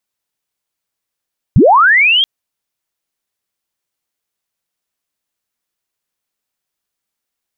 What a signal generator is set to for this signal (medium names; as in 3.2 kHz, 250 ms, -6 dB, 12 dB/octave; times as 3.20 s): sweep linear 77 Hz -> 3.3 kHz -3 dBFS -> -8 dBFS 0.68 s